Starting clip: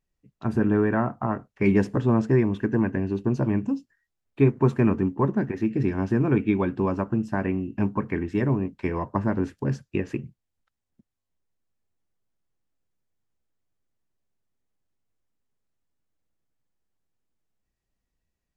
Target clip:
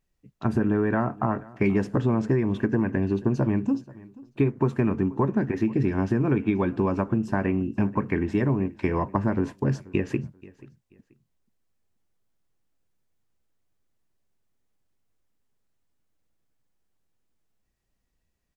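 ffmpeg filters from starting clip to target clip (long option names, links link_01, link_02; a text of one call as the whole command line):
ffmpeg -i in.wav -filter_complex "[0:a]acompressor=threshold=-23dB:ratio=6,asplit=2[link_01][link_02];[link_02]aecho=0:1:483|966:0.0841|0.0219[link_03];[link_01][link_03]amix=inputs=2:normalize=0,volume=4dB" out.wav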